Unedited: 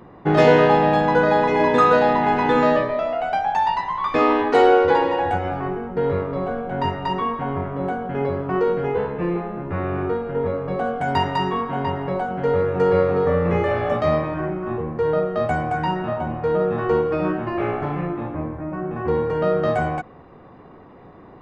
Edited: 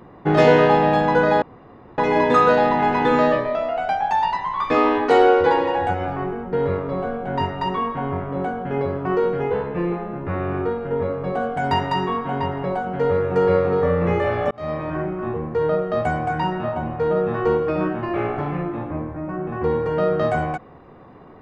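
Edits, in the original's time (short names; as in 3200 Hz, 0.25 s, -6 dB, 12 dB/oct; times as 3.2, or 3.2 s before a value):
1.42 insert room tone 0.56 s
13.95–14.36 fade in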